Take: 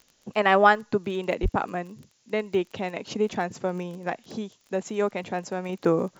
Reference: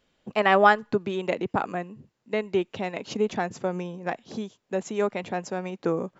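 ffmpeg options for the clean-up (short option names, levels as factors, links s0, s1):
-filter_complex "[0:a]adeclick=t=4,asplit=3[s0][s1][s2];[s0]afade=t=out:st=1.42:d=0.02[s3];[s1]highpass=f=140:w=0.5412,highpass=f=140:w=1.3066,afade=t=in:st=1.42:d=0.02,afade=t=out:st=1.54:d=0.02[s4];[s2]afade=t=in:st=1.54:d=0.02[s5];[s3][s4][s5]amix=inputs=3:normalize=0,agate=range=0.0891:threshold=0.00178,asetnsamples=n=441:p=0,asendcmd='5.69 volume volume -4dB',volume=1"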